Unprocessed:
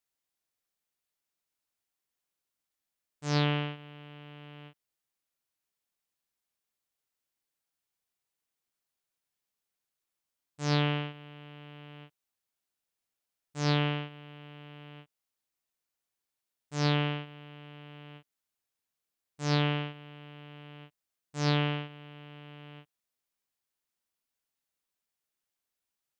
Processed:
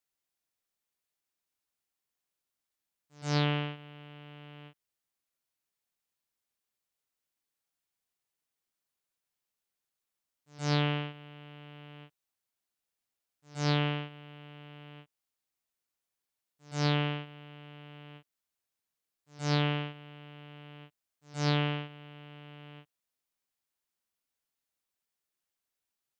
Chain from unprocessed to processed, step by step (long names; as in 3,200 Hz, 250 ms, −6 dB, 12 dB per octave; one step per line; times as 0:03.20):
echo ahead of the sound 124 ms −22.5 dB
level −1 dB